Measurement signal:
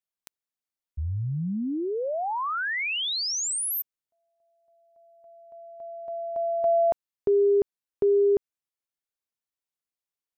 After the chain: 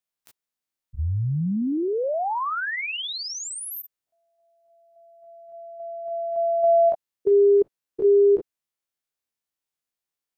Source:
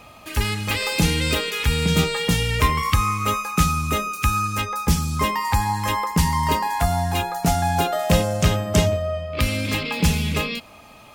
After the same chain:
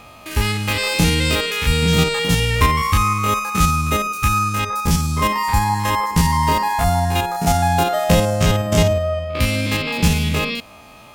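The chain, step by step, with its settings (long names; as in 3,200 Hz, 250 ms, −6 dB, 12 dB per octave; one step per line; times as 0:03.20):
spectrum averaged block by block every 50 ms
level +4.5 dB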